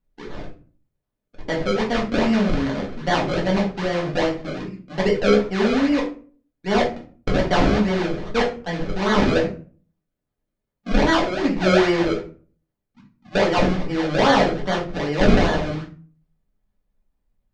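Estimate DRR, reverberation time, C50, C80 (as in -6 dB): -3.0 dB, 0.40 s, 9.5 dB, 15.0 dB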